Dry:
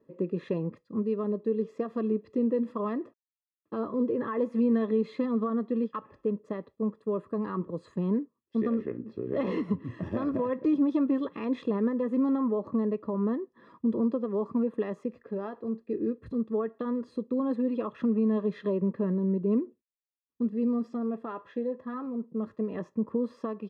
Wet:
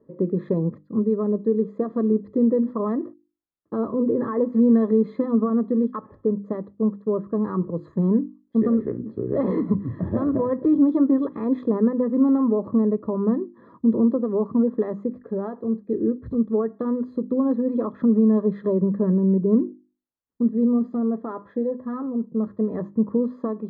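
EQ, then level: boxcar filter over 16 samples; bass shelf 250 Hz +6 dB; hum notches 50/100/150/200/250/300/350 Hz; +5.5 dB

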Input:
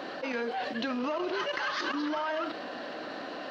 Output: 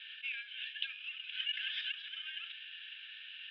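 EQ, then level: steep high-pass 1.8 kHz 72 dB/octave; elliptic low-pass 3.7 kHz, stop band 50 dB; static phaser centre 2.9 kHz, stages 8; +5.0 dB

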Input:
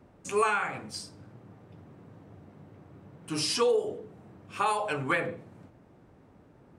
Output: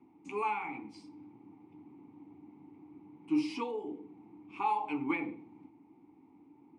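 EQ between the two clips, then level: vowel filter u; +7.5 dB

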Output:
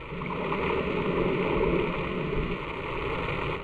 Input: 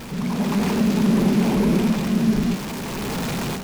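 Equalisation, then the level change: resonant low-pass 2.1 kHz, resonance Q 1.7; static phaser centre 1.1 kHz, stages 8; 0.0 dB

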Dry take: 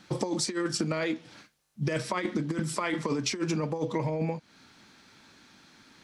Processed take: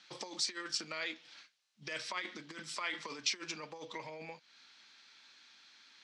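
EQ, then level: band-pass filter 4.1 kHz, Q 0.88; distance through air 61 m; +1.5 dB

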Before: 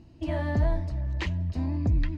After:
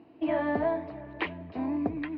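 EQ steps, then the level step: distance through air 65 m; cabinet simulation 280–3500 Hz, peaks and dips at 290 Hz +7 dB, 440 Hz +8 dB, 730 Hz +9 dB, 1.1 kHz +6 dB, 1.5 kHz +3 dB, 2.3 kHz +5 dB; 0.0 dB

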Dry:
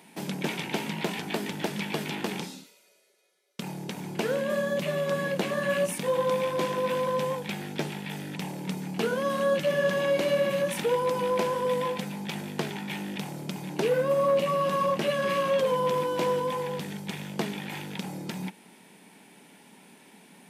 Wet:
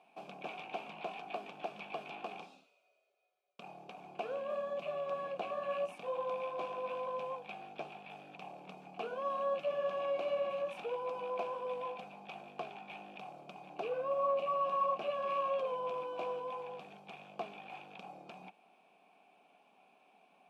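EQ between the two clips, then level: vowel filter a; bass shelf 71 Hz +11 dB; +1.0 dB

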